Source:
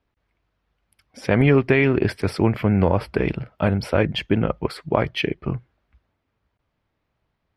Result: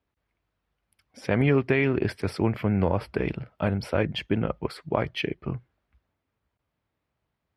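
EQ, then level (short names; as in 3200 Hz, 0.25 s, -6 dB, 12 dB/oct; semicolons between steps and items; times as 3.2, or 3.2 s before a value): HPF 46 Hz; -5.5 dB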